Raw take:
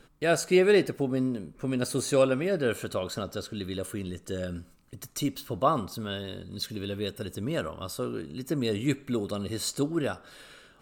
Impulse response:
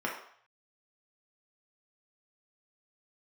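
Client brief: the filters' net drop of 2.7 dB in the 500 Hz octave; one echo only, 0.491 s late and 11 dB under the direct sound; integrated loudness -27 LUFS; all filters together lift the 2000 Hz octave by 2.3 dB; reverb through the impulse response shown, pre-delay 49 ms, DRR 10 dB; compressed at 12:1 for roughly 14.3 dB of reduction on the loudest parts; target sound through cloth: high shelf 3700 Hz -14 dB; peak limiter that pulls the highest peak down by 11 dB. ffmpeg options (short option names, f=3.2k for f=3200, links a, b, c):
-filter_complex "[0:a]equalizer=f=500:t=o:g=-3.5,equalizer=f=2k:t=o:g=7,acompressor=threshold=-32dB:ratio=12,alimiter=level_in=8dB:limit=-24dB:level=0:latency=1,volume=-8dB,aecho=1:1:491:0.282,asplit=2[a][b];[1:a]atrim=start_sample=2205,adelay=49[c];[b][c]afir=irnorm=-1:irlink=0,volume=-17.5dB[d];[a][d]amix=inputs=2:normalize=0,highshelf=f=3.7k:g=-14,volume=15.5dB"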